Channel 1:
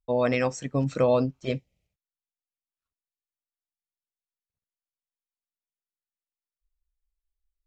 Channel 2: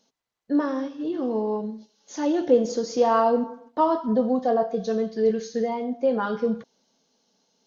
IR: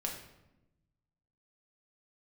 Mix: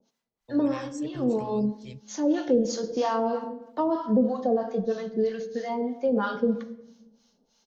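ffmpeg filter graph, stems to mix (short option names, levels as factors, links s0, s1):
-filter_complex "[0:a]equalizer=f=840:w=0.4:g=-14,acrossover=split=130|3000[s0][s1][s2];[s1]acompressor=threshold=0.01:ratio=6[s3];[s0][s3][s2]amix=inputs=3:normalize=0,adelay=400,volume=0.562[s4];[1:a]acrossover=split=690[s5][s6];[s5]aeval=exprs='val(0)*(1-1/2+1/2*cos(2*PI*3.1*n/s))':c=same[s7];[s6]aeval=exprs='val(0)*(1-1/2-1/2*cos(2*PI*3.1*n/s))':c=same[s8];[s7][s8]amix=inputs=2:normalize=0,volume=1.12,asplit=2[s9][s10];[s10]volume=0.473[s11];[2:a]atrim=start_sample=2205[s12];[s11][s12]afir=irnorm=-1:irlink=0[s13];[s4][s9][s13]amix=inputs=3:normalize=0,acrossover=split=310|3000[s14][s15][s16];[s15]acompressor=threshold=0.0708:ratio=6[s17];[s14][s17][s16]amix=inputs=3:normalize=0"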